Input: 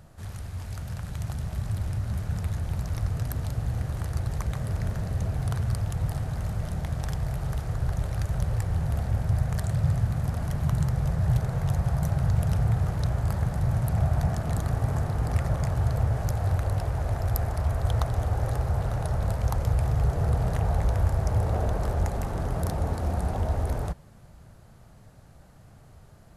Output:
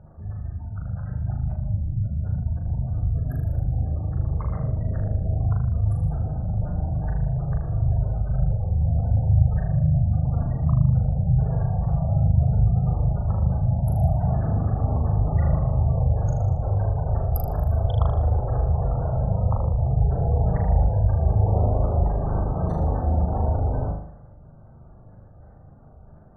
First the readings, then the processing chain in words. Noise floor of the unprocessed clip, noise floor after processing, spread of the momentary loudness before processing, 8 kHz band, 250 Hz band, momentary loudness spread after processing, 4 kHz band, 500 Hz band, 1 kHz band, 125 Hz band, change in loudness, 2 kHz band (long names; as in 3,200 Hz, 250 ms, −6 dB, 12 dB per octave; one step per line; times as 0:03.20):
−51 dBFS, −47 dBFS, 6 LU, below −15 dB, +4.5 dB, 6 LU, below −10 dB, +3.5 dB, +2.5 dB, +4.5 dB, +4.5 dB, can't be measured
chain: gate on every frequency bin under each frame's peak −25 dB strong
flutter between parallel walls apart 6.7 metres, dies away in 0.66 s
low-pass that shuts in the quiet parts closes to 1,200 Hz, open at −19.5 dBFS
level +2 dB